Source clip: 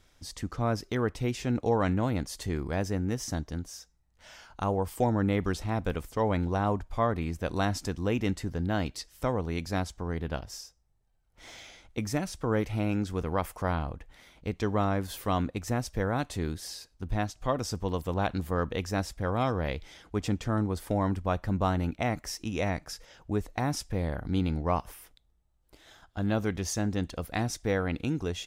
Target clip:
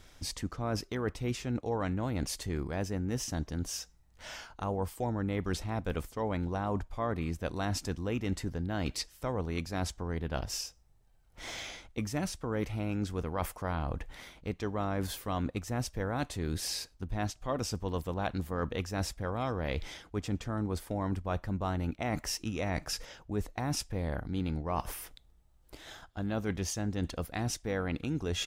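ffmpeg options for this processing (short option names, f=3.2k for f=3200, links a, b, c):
-filter_complex "[0:a]asplit=2[a][b];[b]asetrate=22050,aresample=44100,atempo=2,volume=-17dB[c];[a][c]amix=inputs=2:normalize=0,areverse,acompressor=threshold=-38dB:ratio=4,areverse,volume=6.5dB"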